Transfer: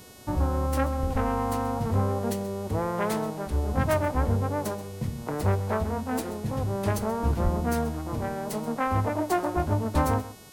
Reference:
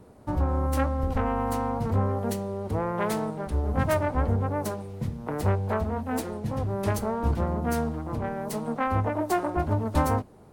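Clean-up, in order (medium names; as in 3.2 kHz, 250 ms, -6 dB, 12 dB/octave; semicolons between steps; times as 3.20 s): clip repair -14.5 dBFS; de-hum 367.6 Hz, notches 37; 7.43–7.55 s: high-pass 140 Hz 24 dB/octave; inverse comb 131 ms -16 dB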